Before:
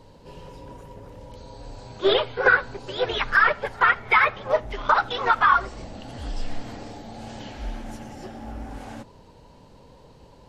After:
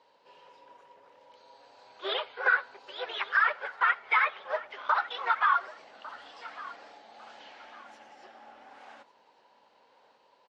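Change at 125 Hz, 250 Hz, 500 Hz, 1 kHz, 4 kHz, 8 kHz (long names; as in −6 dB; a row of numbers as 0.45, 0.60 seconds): below −35 dB, below −20 dB, −13.5 dB, −7.0 dB, −8.0 dB, can't be measured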